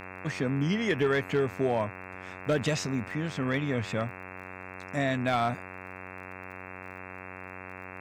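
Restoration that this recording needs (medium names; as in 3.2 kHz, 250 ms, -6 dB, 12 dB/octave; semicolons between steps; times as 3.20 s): clip repair -18 dBFS; de-click; de-hum 92.8 Hz, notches 29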